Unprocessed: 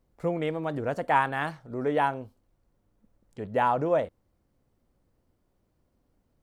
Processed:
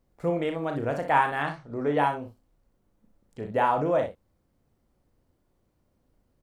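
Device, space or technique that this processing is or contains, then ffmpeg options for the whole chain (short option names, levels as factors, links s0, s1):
slapback doubling: -filter_complex "[0:a]asplit=3[s0][s1][s2];[s1]adelay=35,volume=0.447[s3];[s2]adelay=62,volume=0.376[s4];[s0][s3][s4]amix=inputs=3:normalize=0,asplit=3[s5][s6][s7];[s5]afade=t=out:st=1.42:d=0.02[s8];[s6]lowpass=7200,afade=t=in:st=1.42:d=0.02,afade=t=out:st=1.97:d=0.02[s9];[s7]afade=t=in:st=1.97:d=0.02[s10];[s8][s9][s10]amix=inputs=3:normalize=0"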